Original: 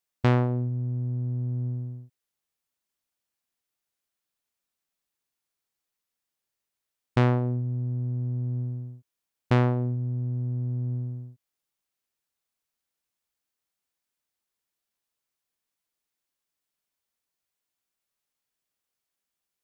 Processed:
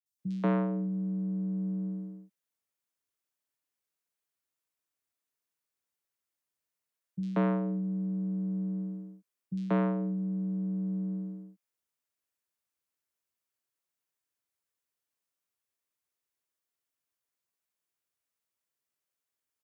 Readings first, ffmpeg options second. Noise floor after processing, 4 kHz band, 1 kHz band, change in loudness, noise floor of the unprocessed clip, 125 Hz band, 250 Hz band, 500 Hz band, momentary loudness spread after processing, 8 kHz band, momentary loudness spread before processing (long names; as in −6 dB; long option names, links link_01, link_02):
below −85 dBFS, below −10 dB, −6.0 dB, −4.5 dB, below −85 dBFS, −10.0 dB, +2.0 dB, −4.5 dB, 12 LU, can't be measured, 13 LU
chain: -filter_complex "[0:a]bandreject=frequency=730:width=12,acrossover=split=210|320|1100[link_01][link_02][link_03][link_04];[link_02]acompressor=threshold=-47dB:ratio=6[link_05];[link_04]alimiter=level_in=5dB:limit=-24dB:level=0:latency=1:release=186,volume=-5dB[link_06];[link_01][link_05][link_03][link_06]amix=inputs=4:normalize=0,afreqshift=66,acrossover=split=170|3900[link_07][link_08][link_09];[link_09]adelay=60[link_10];[link_08]adelay=190[link_11];[link_07][link_11][link_10]amix=inputs=3:normalize=0,volume=-3dB"